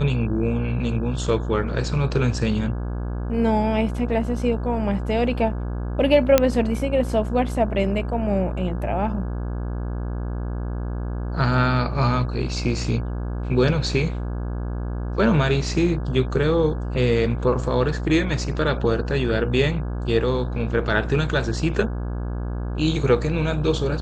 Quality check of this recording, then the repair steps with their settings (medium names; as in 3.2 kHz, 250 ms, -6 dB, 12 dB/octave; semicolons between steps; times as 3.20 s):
buzz 60 Hz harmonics 28 -27 dBFS
6.38 s: pop -1 dBFS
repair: de-click; de-hum 60 Hz, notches 28